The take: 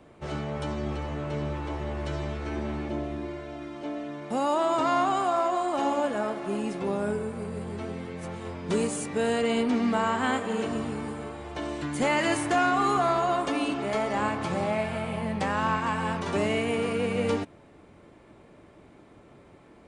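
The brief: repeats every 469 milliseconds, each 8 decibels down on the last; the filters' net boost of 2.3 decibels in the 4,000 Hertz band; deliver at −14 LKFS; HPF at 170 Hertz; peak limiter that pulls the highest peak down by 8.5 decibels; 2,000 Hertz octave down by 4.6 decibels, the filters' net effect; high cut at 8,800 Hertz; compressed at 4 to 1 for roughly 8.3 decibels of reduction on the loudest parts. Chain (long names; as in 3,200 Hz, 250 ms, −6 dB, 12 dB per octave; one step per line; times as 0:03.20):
high-pass filter 170 Hz
low-pass filter 8,800 Hz
parametric band 2,000 Hz −8 dB
parametric band 4,000 Hz +7 dB
downward compressor 4 to 1, threshold −32 dBFS
brickwall limiter −30.5 dBFS
repeating echo 469 ms, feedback 40%, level −8 dB
level +24.5 dB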